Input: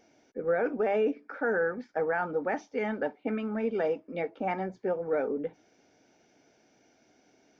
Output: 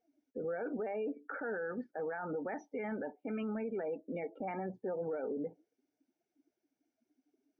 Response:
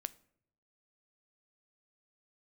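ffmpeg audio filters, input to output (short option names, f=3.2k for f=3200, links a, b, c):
-af "acompressor=threshold=-32dB:ratio=6,alimiter=level_in=8.5dB:limit=-24dB:level=0:latency=1:release=16,volume=-8.5dB,afftdn=nr=28:nf=-49,volume=1.5dB"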